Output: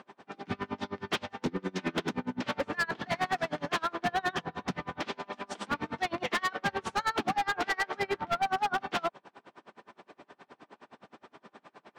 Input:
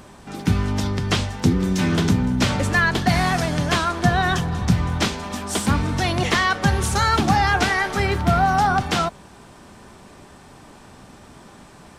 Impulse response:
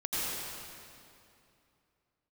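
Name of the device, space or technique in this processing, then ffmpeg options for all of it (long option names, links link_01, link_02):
helicopter radio: -af "highpass=320,lowpass=3000,aeval=exprs='val(0)*pow(10,-32*(0.5-0.5*cos(2*PI*9.6*n/s))/20)':channel_layout=same,asoftclip=type=hard:threshold=-24dB"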